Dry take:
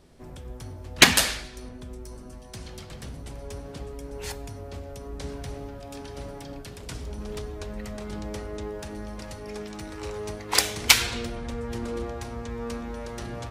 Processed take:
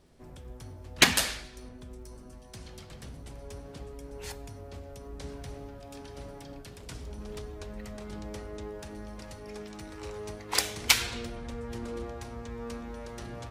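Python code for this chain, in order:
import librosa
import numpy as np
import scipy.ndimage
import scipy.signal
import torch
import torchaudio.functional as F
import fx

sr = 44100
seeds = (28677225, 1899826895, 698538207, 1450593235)

y = fx.dmg_crackle(x, sr, seeds[0], per_s=74.0, level_db=-54.0)
y = y * librosa.db_to_amplitude(-5.5)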